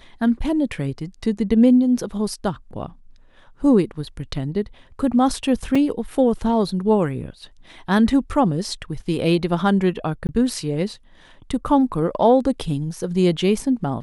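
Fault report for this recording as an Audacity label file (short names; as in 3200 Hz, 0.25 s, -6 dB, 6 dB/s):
5.750000	5.750000	gap 3.9 ms
10.270000	10.290000	gap 19 ms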